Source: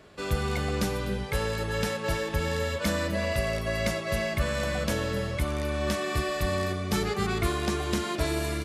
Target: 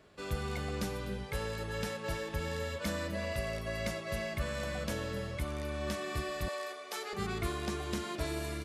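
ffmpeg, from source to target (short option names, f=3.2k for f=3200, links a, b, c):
-filter_complex "[0:a]asettb=1/sr,asplit=3[a][b][c];[a]atrim=end=6.484[d];[b]atrim=start=6.48:end=7.13,asetpts=PTS-STARTPTS,afade=t=in:d=0.004:c=qsin,afade=t=out:st=0.646:d=0.004:c=qsin,highpass=f=460:w=0.5412,highpass=f=460:w=1.3066[e];[c]atrim=start=7.126[f];[d][e]acrossfade=d=0.004:c1=hsin:c2=qsin[g];[g][f]acrossfade=d=0.004:c1=qsin:c2=hsin,volume=-8dB"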